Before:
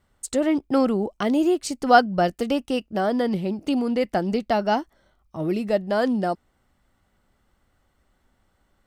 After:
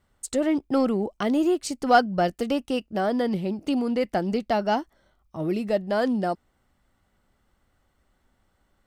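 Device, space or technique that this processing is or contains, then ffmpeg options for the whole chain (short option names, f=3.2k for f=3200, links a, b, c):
parallel distortion: -filter_complex "[0:a]asplit=2[a][b];[b]asoftclip=type=hard:threshold=-17dB,volume=-10dB[c];[a][c]amix=inputs=2:normalize=0,volume=-4dB"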